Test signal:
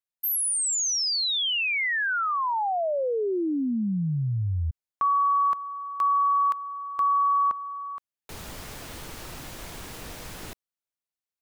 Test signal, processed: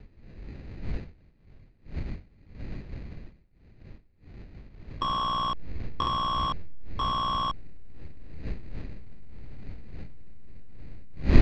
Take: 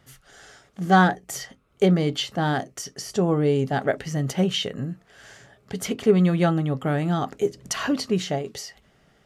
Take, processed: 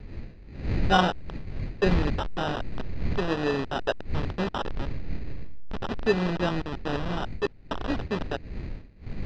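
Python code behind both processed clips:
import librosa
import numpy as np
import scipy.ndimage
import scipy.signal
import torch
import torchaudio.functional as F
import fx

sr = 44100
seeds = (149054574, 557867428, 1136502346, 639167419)

y = fx.delta_hold(x, sr, step_db=-19.5)
y = fx.dmg_wind(y, sr, seeds[0], corner_hz=120.0, level_db=-27.0)
y = fx.peak_eq(y, sr, hz=120.0, db=-7.0, octaves=2.1)
y = fx.sample_hold(y, sr, seeds[1], rate_hz=2200.0, jitter_pct=0)
y = scipy.signal.sosfilt(scipy.signal.butter(4, 4500.0, 'lowpass', fs=sr, output='sos'), y)
y = y * 10.0 ** (-2.5 / 20.0)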